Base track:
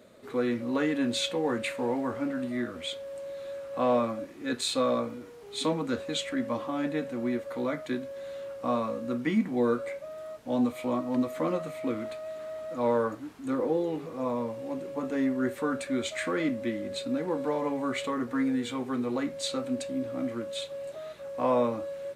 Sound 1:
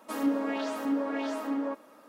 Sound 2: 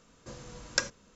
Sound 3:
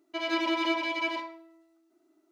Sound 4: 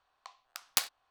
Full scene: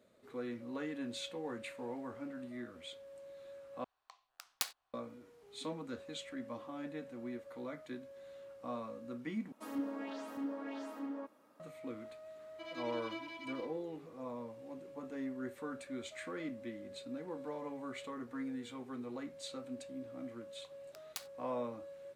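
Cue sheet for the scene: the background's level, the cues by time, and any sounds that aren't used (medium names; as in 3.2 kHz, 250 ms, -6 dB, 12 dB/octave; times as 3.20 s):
base track -13.5 dB
3.84 s: replace with 4 -8.5 dB
9.52 s: replace with 1 -12.5 dB + peaking EQ 100 Hz +11.5 dB 1.3 oct
12.45 s: add 3 -17 dB
20.39 s: add 4 -16.5 dB
not used: 2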